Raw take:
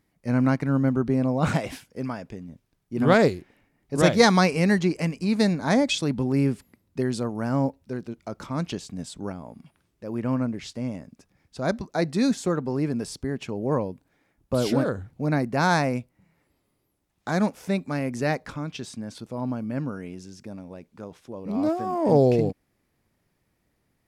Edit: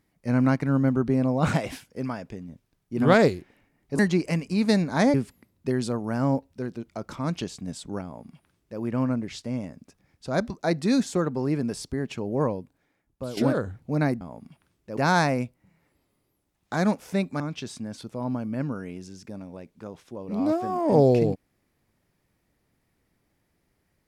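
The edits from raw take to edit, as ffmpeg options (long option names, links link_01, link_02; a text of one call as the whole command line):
ffmpeg -i in.wav -filter_complex "[0:a]asplit=7[link_01][link_02][link_03][link_04][link_05][link_06][link_07];[link_01]atrim=end=3.992[link_08];[link_02]atrim=start=4.698:end=5.852[link_09];[link_03]atrim=start=6.448:end=14.68,asetpts=PTS-STARTPTS,afade=type=out:start_time=7.262:duration=0.97:silence=0.223872[link_10];[link_04]atrim=start=14.68:end=15.522,asetpts=PTS-STARTPTS,afade=type=in:duration=0.004:curve=hsin:silence=0.223872[link_11];[link_05]atrim=start=9.348:end=10.112[link_12];[link_06]atrim=start=15.518:end=17.952[link_13];[link_07]atrim=start=18.568[link_14];[link_08][link_09]acrossfade=duration=0.004:curve1=hsin:curve2=hsin[link_15];[link_10][link_11]concat=n=2:v=0:a=1[link_16];[link_15][link_16]acrossfade=duration=0.004:curve1=hsin:curve2=hsin[link_17];[link_17][link_12]acrossfade=duration=0.004:curve1=hsin:curve2=hsin[link_18];[link_18][link_13]acrossfade=duration=0.004:curve1=hsin:curve2=hsin[link_19];[link_19][link_14]acrossfade=duration=0.004:curve1=hsin:curve2=hsin" out.wav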